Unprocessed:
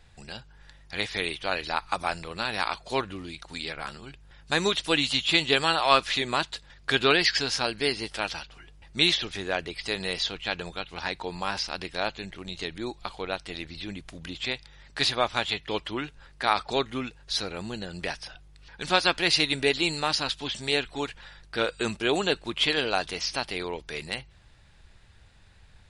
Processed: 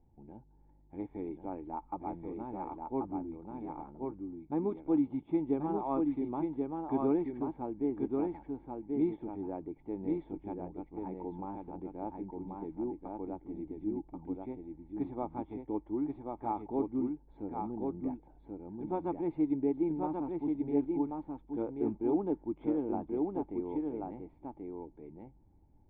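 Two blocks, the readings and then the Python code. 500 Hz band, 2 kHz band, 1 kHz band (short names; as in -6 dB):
-6.0 dB, under -30 dB, -10.5 dB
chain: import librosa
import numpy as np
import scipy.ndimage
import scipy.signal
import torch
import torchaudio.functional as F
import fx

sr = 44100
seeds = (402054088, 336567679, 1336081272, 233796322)

y = fx.dynamic_eq(x, sr, hz=1200.0, q=4.1, threshold_db=-44.0, ratio=4.0, max_db=7)
y = fx.formant_cascade(y, sr, vowel='u')
y = y + 10.0 ** (-3.5 / 20.0) * np.pad(y, (int(1084 * sr / 1000.0), 0))[:len(y)]
y = y * librosa.db_to_amplitude(4.5)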